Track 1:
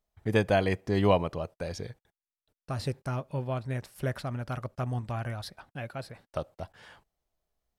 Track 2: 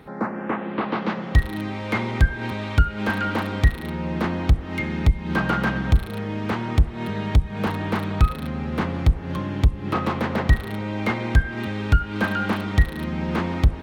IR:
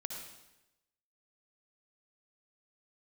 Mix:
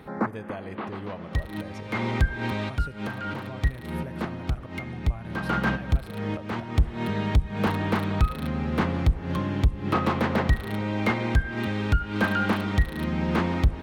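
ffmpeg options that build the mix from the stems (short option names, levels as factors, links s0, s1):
-filter_complex "[0:a]equalizer=f=5100:t=o:w=1.4:g=-6,acompressor=threshold=0.0158:ratio=2.5,volume=0.596,asplit=3[s0][s1][s2];[s1]volume=0.299[s3];[1:a]volume=1[s4];[s2]apad=whole_len=609518[s5];[s4][s5]sidechaincompress=threshold=0.00282:ratio=4:attack=8.8:release=219[s6];[2:a]atrim=start_sample=2205[s7];[s3][s7]afir=irnorm=-1:irlink=0[s8];[s0][s6][s8]amix=inputs=3:normalize=0,alimiter=limit=0.251:level=0:latency=1:release=218"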